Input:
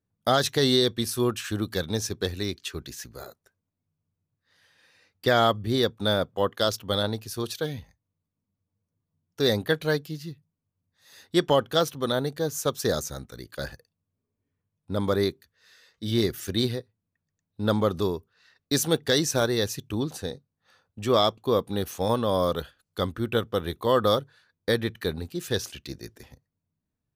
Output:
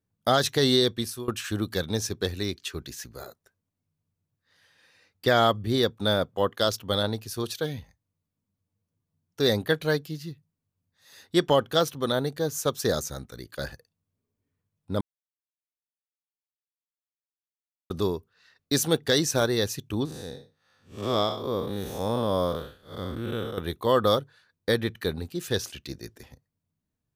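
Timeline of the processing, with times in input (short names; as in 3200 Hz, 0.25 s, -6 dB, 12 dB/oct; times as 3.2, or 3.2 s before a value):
0.8–1.28 fade out equal-power, to -20.5 dB
15.01–17.9 mute
20.05–23.58 time blur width 0.178 s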